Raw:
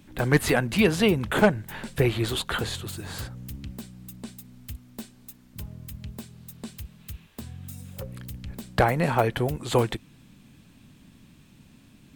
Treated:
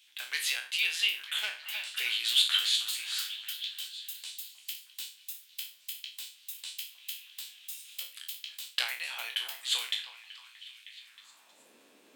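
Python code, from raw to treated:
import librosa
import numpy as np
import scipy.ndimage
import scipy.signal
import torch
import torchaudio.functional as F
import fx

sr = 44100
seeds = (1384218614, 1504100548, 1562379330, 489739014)

y = fx.spec_trails(x, sr, decay_s=0.37)
y = scipy.signal.sosfilt(scipy.signal.butter(2, 260.0, 'highpass', fs=sr, output='sos'), y)
y = fx.echo_stepped(y, sr, ms=314, hz=850.0, octaves=0.7, feedback_pct=70, wet_db=-8)
y = fx.rider(y, sr, range_db=4, speed_s=0.5)
y = fx.filter_sweep_highpass(y, sr, from_hz=3100.0, to_hz=450.0, start_s=10.84, end_s=11.69, q=2.5)
y = y * librosa.db_to_amplitude(-3.0)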